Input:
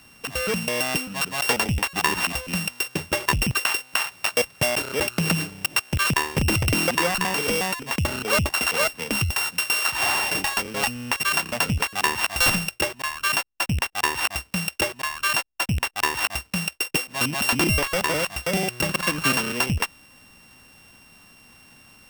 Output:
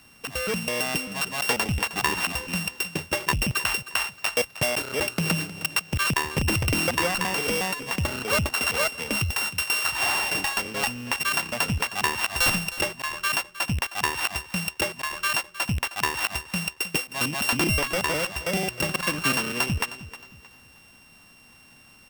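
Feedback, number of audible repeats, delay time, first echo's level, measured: 33%, 3, 312 ms, −15.5 dB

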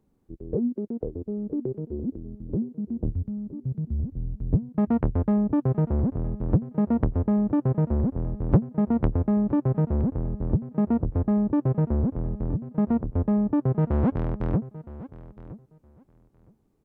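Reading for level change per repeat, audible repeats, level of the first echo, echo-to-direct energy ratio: −16.0 dB, 2, −17.0 dB, −17.0 dB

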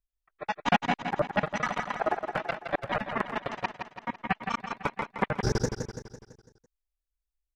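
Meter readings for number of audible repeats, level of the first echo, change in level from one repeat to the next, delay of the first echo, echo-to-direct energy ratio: 5, −7.0 dB, −6.0 dB, 167 ms, −5.5 dB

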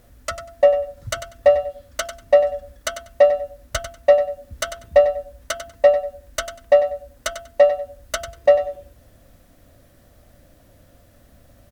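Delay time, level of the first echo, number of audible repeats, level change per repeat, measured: 96 ms, −11.0 dB, 2, −15.0 dB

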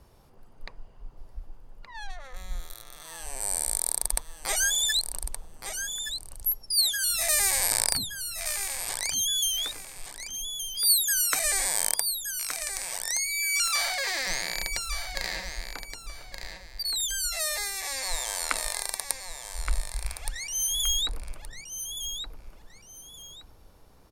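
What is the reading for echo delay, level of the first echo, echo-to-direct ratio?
1,171 ms, −8.0 dB, −7.5 dB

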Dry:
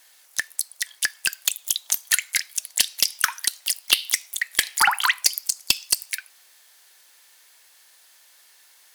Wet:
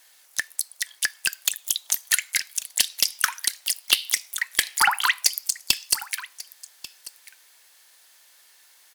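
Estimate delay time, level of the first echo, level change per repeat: 1,141 ms, −18.0 dB, repeats not evenly spaced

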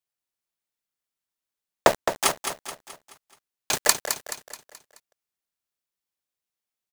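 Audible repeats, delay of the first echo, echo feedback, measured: 5, 214 ms, 46%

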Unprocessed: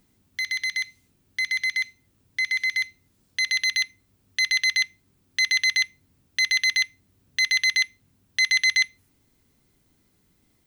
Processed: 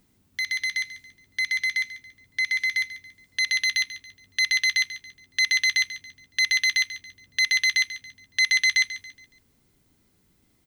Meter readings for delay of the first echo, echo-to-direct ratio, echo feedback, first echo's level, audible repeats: 140 ms, −13.5 dB, 37%, −14.0 dB, 3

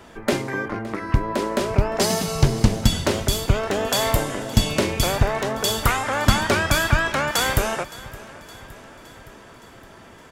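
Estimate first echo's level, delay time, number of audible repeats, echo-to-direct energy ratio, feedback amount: −19.5 dB, 566 ms, 4, −17.5 dB, 59%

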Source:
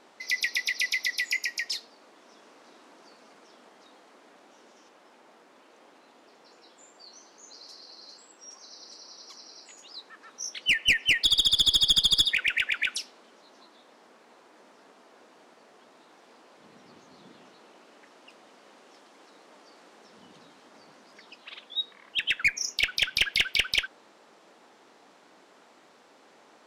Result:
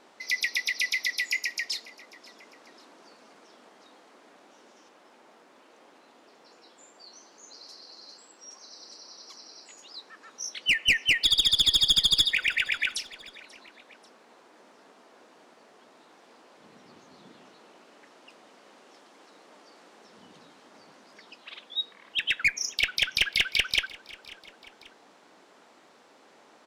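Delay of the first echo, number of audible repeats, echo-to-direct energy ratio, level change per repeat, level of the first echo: 539 ms, 2, −20.5 dB, −5.0 dB, −21.5 dB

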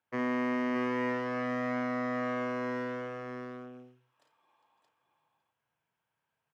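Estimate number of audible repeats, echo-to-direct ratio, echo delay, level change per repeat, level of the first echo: 3, −2.5 dB, 53 ms, repeats not evenly spaced, −6.5 dB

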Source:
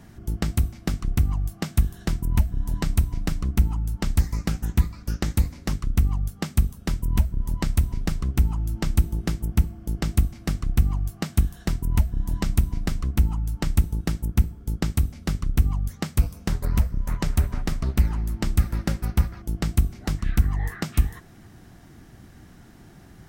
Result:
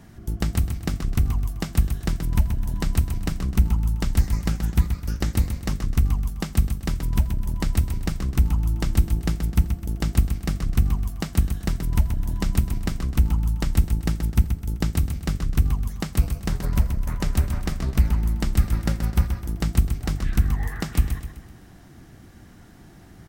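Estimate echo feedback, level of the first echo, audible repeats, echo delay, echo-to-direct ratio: 42%, −8.0 dB, 4, 128 ms, −7.0 dB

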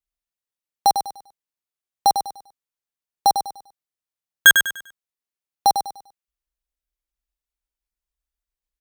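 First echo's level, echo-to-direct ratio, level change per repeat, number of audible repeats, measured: −8.0 dB, −7.5 dB, −10.0 dB, 3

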